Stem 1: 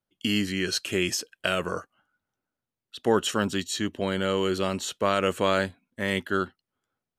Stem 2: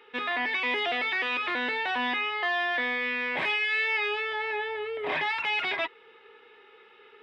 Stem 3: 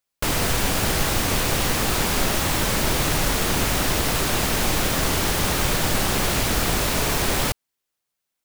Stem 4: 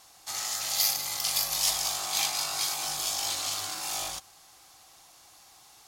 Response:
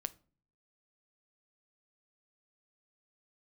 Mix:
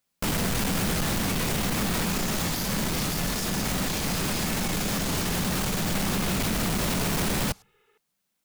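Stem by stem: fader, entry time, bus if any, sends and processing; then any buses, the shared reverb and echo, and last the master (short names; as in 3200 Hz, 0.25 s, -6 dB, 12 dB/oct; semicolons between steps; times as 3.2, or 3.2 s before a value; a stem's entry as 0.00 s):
off
-12.5 dB, 0.75 s, no send, dry
+2.5 dB, 0.00 s, send -20.5 dB, soft clip -25.5 dBFS, distortion -8 dB; bell 190 Hz +11.5 dB 0.79 oct
-2.0 dB, 1.75 s, no send, dry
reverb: on, RT60 0.40 s, pre-delay 7 ms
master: limiter -20 dBFS, peak gain reduction 10 dB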